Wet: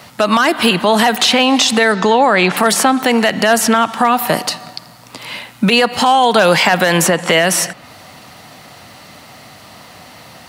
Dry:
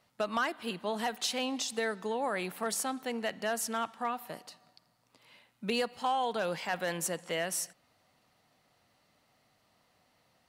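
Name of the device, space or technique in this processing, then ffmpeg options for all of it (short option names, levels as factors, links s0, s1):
mastering chain: -filter_complex "[0:a]highpass=59,equalizer=f=470:t=o:w=0.77:g=-3,acrossover=split=520|3500[s0][s1][s2];[s0]acompressor=threshold=0.00794:ratio=4[s3];[s1]acompressor=threshold=0.0158:ratio=4[s4];[s2]acompressor=threshold=0.00355:ratio=4[s5];[s3][s4][s5]amix=inputs=3:normalize=0,acompressor=threshold=0.00891:ratio=2,alimiter=level_in=44.7:limit=0.891:release=50:level=0:latency=1,asettb=1/sr,asplit=3[s6][s7][s8];[s6]atrim=end=1.924[s9];[s7]atrim=start=1.92:end=2.57,asetpts=PTS-STARTPTS,afade=t=in:d=0.004:c=qsin,afade=t=out:st=0.646:d=0.004:c=qsin,lowpass=f=6700:w=0.5412,lowpass=f=6700:w=1.3066[s10];[s8]atrim=start=2.566[s11];[s9][s10]acrossfade=d=0.004:c1=hsin:c2=qsin[s12];[s12][s11]acrossfade=d=0.004:c1=qsin:c2=hsin,volume=0.891"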